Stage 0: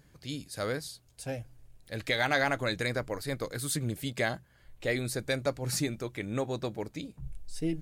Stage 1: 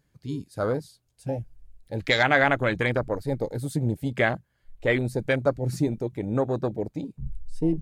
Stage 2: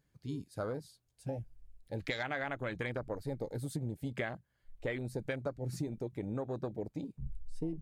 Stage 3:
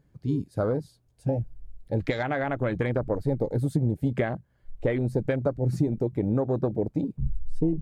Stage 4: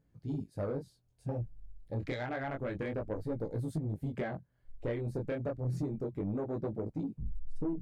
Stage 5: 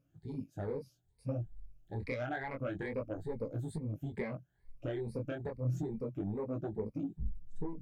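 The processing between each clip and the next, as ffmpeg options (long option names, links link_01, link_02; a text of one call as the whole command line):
ffmpeg -i in.wav -af "afwtdn=0.0178,volume=7.5dB" out.wav
ffmpeg -i in.wav -af "acompressor=threshold=-27dB:ratio=6,volume=-6.5dB" out.wav
ffmpeg -i in.wav -af "tiltshelf=frequency=1300:gain=7,volume=6.5dB" out.wav
ffmpeg -i in.wav -af "flanger=delay=18:depth=8:speed=0.29,asoftclip=type=tanh:threshold=-22dB,volume=-5dB" out.wav
ffmpeg -i in.wav -af "afftfilt=real='re*pow(10,15/40*sin(2*PI*(0.91*log(max(b,1)*sr/1024/100)/log(2)-(2.3)*(pts-256)/sr)))':imag='im*pow(10,15/40*sin(2*PI*(0.91*log(max(b,1)*sr/1024/100)/log(2)-(2.3)*(pts-256)/sr)))':win_size=1024:overlap=0.75,equalizer=frequency=2400:width=5.1:gain=3.5,volume=-4.5dB" out.wav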